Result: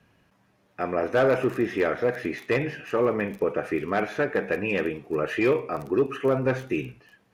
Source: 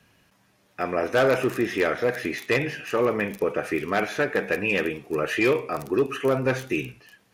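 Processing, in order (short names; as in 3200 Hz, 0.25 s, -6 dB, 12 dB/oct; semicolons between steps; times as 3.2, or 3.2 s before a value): high shelf 2700 Hz -11 dB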